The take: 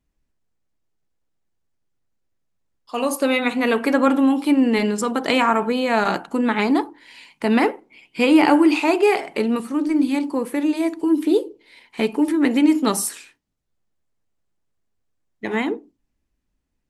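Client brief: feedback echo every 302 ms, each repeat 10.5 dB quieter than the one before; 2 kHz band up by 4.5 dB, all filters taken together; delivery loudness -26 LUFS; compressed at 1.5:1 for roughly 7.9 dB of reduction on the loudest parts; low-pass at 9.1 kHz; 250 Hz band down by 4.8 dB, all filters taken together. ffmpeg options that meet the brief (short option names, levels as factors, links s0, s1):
-af "lowpass=9100,equalizer=f=250:t=o:g=-6,equalizer=f=2000:t=o:g=5.5,acompressor=threshold=0.0178:ratio=1.5,aecho=1:1:302|604|906:0.299|0.0896|0.0269,volume=1.19"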